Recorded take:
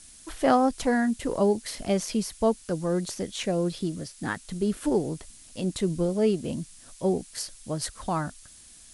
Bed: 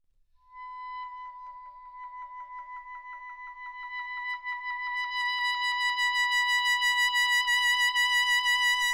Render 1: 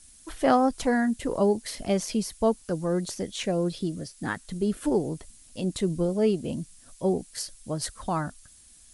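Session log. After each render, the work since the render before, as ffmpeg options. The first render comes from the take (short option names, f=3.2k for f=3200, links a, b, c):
-af "afftdn=nr=6:nf=-51"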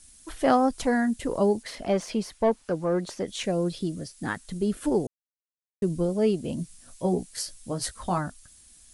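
-filter_complex "[0:a]asettb=1/sr,asplit=3[a][b][c];[a]atrim=end=1.634[d];[b]atrim=start=1.63:end=3.28,asetpts=PTS-STARTPTS,afade=t=in:d=0.004:c=qsin,afade=t=out:st=1.646:d=0.004:c=qsin,asplit=2[e][f];[f]highpass=f=720:p=1,volume=13dB,asoftclip=type=tanh:threshold=-12.5dB[g];[e][g]amix=inputs=2:normalize=0,lowpass=f=1.3k:p=1,volume=-6dB[h];[c]atrim=start=3.276[i];[d][h]acrossfade=d=0.004:c1=hsin:c2=qsin[j];[j][i]acrossfade=d=0.004:c1=qsin:c2=hsin,asettb=1/sr,asplit=3[k][l][m];[k]atrim=end=6.574[n];[l]atrim=start=6.57:end=8.18,asetpts=PTS-STARTPTS,afade=t=in:d=0.004:c=qsin,afade=t=out:st=1.606:d=0.004:c=qsin,asplit=2[o][p];[p]adelay=17,volume=-5dB[q];[o][q]amix=inputs=2:normalize=0,atrim=end_sample=71001[r];[m]atrim=start=8.176[s];[n][r]acrossfade=d=0.004:c1=hsin:c2=qsin[t];[t][s]acrossfade=d=0.004:c1=qsin:c2=hsin,asplit=3[u][v][w];[u]atrim=end=5.07,asetpts=PTS-STARTPTS,afade=t=out:st=5.066:d=0.004:c=hsin[x];[v]atrim=start=5.07:end=5.82,asetpts=PTS-STARTPTS,volume=0[y];[w]atrim=start=5.82,asetpts=PTS-STARTPTS,afade=t=in:d=0.004:c=hsin[z];[x][y][z]concat=n=3:v=0:a=1"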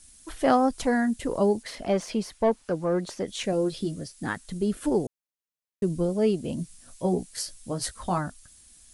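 -filter_complex "[0:a]asettb=1/sr,asplit=3[a][b][c];[a]atrim=end=3.514[d];[b]atrim=start=3.51:end=3.98,asetpts=PTS-STARTPTS,afade=t=in:d=0.004:c=qsin,afade=t=out:st=0.466:d=0.004:c=qsin,asplit=2[e][f];[f]adelay=14,volume=-6dB[g];[e][g]amix=inputs=2:normalize=0,atrim=end_sample=20727[h];[c]atrim=start=3.976[i];[d][h]acrossfade=d=0.004:c1=hsin:c2=qsin[j];[j][i]acrossfade=d=0.004:c1=qsin:c2=hsin"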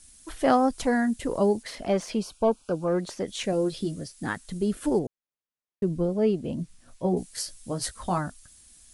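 -filter_complex "[0:a]asettb=1/sr,asplit=3[a][b][c];[a]atrim=end=2.194[d];[b]atrim=start=2.19:end=2.88,asetpts=PTS-STARTPTS,afade=t=in:d=0.004:c=qsin,afade=t=out:st=0.686:d=0.004:c=qsin,asuperstop=centerf=1900:order=8:qfactor=2.5[e];[c]atrim=start=2.876[f];[d][e]acrossfade=d=0.004:c1=hsin:c2=qsin[g];[g][f]acrossfade=d=0.004:c1=qsin:c2=hsin,asettb=1/sr,asplit=3[h][i][j];[h]atrim=end=4.994[k];[i]atrim=start=4.99:end=7.17,asetpts=PTS-STARTPTS,afade=t=in:d=0.004:c=qsin,afade=t=out:st=2.176:d=0.004:c=qsin,lowpass=f=2.4k:p=1[l];[j]atrim=start=7.166[m];[k][l]acrossfade=d=0.004:c1=hsin:c2=qsin[n];[n][m]acrossfade=d=0.004:c1=qsin:c2=hsin"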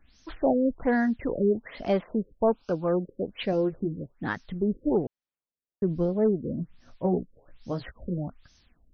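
-af "asoftclip=type=hard:threshold=-15.5dB,afftfilt=real='re*lt(b*sr/1024,540*pow(6500/540,0.5+0.5*sin(2*PI*1.2*pts/sr)))':imag='im*lt(b*sr/1024,540*pow(6500/540,0.5+0.5*sin(2*PI*1.2*pts/sr)))':win_size=1024:overlap=0.75"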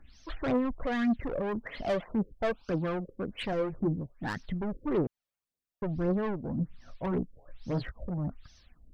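-af "asoftclip=type=tanh:threshold=-27.5dB,aphaser=in_gain=1:out_gain=1:delay=1.9:decay=0.5:speed=1.8:type=triangular"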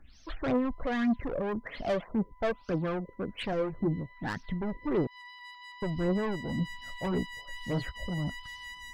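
-filter_complex "[1:a]volume=-19.5dB[a];[0:a][a]amix=inputs=2:normalize=0"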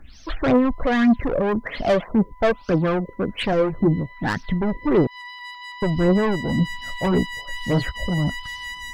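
-af "volume=11dB"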